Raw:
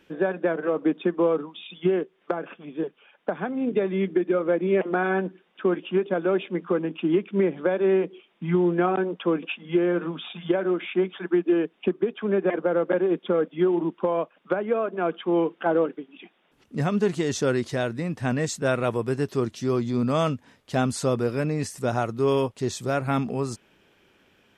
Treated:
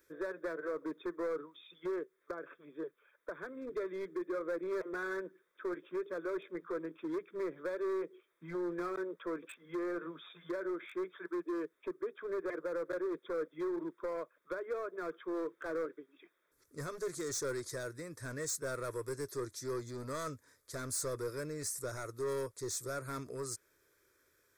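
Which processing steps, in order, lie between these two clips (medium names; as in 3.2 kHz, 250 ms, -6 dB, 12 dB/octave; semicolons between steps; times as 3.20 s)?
pre-emphasis filter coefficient 0.8; hard clipper -34.5 dBFS, distortion -11 dB; static phaser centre 780 Hz, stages 6; trim +3 dB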